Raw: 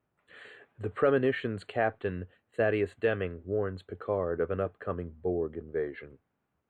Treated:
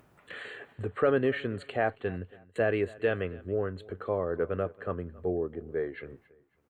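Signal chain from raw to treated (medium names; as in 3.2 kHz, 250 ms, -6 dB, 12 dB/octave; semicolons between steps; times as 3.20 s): gate with hold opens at -49 dBFS; upward compressor, threshold -33 dBFS; feedback delay 276 ms, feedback 33%, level -22 dB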